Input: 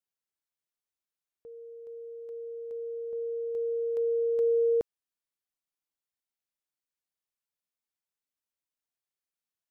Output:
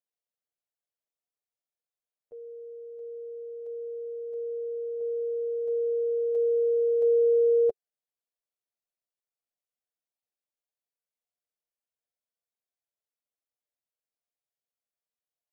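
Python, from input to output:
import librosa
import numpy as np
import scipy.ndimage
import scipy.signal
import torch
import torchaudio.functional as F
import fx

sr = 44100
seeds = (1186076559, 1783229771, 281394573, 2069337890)

y = fx.band_shelf(x, sr, hz=570.0, db=10.0, octaves=1.0)
y = fx.stretch_grains(y, sr, factor=1.6, grain_ms=45.0)
y = y * 10.0 ** (-6.5 / 20.0)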